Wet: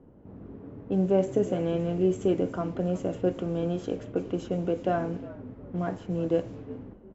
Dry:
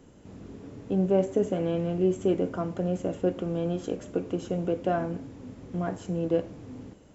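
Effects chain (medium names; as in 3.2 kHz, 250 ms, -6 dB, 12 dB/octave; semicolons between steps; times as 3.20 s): frequency-shifting echo 359 ms, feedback 33%, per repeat -60 Hz, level -17 dB; level-controlled noise filter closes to 870 Hz, open at -23.5 dBFS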